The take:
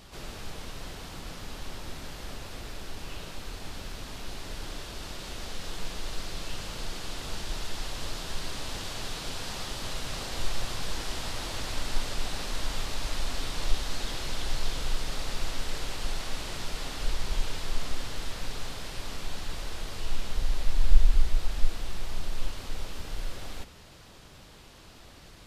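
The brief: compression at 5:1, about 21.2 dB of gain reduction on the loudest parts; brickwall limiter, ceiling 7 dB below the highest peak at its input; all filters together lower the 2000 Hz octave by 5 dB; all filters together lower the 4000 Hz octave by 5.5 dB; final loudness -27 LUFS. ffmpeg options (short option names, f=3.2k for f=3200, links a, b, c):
-af "equalizer=f=2k:t=o:g=-5,equalizer=f=4k:t=o:g=-5.5,acompressor=threshold=-32dB:ratio=5,volume=19dB,alimiter=limit=-12.5dB:level=0:latency=1"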